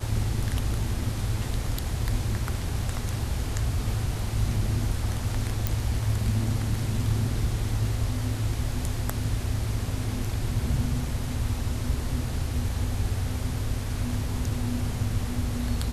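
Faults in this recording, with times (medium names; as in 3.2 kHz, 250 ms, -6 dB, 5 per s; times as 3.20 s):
5.67 s: pop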